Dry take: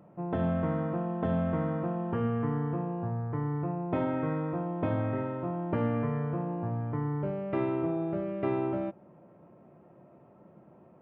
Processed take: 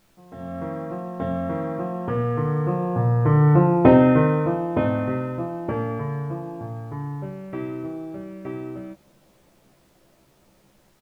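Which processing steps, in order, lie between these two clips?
Doppler pass-by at 3.69, 8 m/s, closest 3.3 m; AGC gain up to 14 dB; added noise pink -66 dBFS; doubler 15 ms -5 dB; gain +3 dB

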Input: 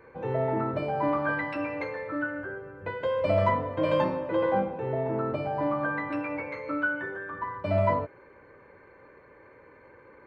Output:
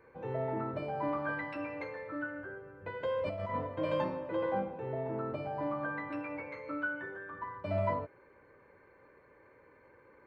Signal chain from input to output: 2.94–3.67 negative-ratio compressor -26 dBFS, ratio -0.5; gain -7.5 dB

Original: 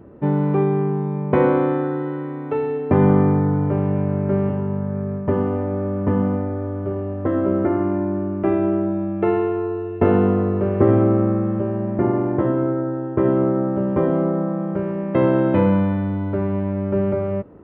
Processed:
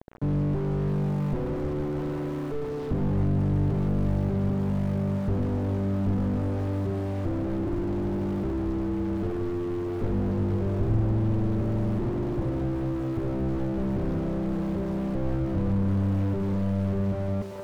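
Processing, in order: requantised 6-bit, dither none; split-band echo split 510 Hz, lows 0.1 s, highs 0.656 s, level -13 dB; slew limiter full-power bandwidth 13 Hz

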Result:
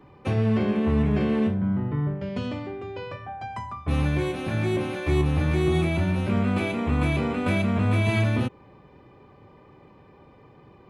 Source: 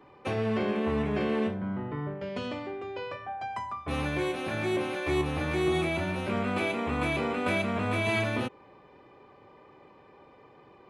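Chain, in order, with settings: tone controls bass +12 dB, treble +1 dB

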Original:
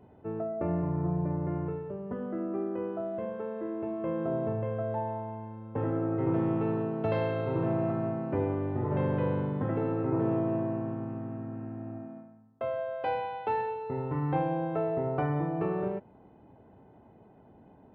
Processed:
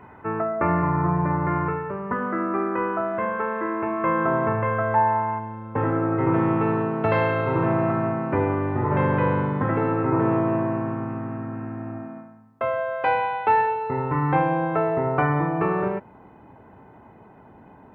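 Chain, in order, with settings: band shelf 1500 Hz +16 dB, from 5.38 s +8.5 dB; gain +6.5 dB

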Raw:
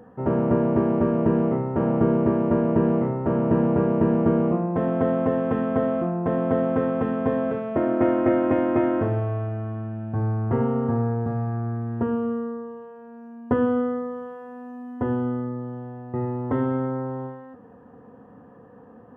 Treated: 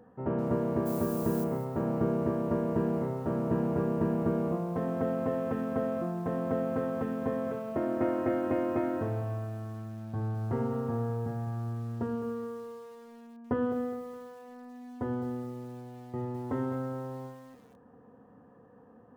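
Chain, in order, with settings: 0.85–1.43 added noise violet -37 dBFS; lo-fi delay 0.208 s, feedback 35%, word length 7-bit, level -12 dB; gain -8.5 dB

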